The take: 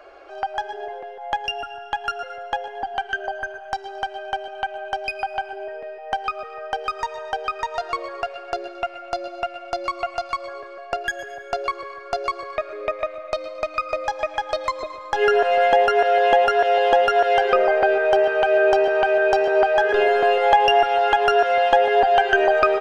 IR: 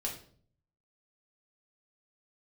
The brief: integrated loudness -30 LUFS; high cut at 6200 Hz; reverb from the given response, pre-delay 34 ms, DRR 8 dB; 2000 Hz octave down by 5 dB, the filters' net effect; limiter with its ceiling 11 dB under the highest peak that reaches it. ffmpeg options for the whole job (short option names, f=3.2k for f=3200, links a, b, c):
-filter_complex "[0:a]lowpass=6.2k,equalizer=f=2k:t=o:g=-7,alimiter=limit=-14.5dB:level=0:latency=1,asplit=2[a][b];[1:a]atrim=start_sample=2205,adelay=34[c];[b][c]afir=irnorm=-1:irlink=0,volume=-10dB[d];[a][d]amix=inputs=2:normalize=0,volume=-5dB"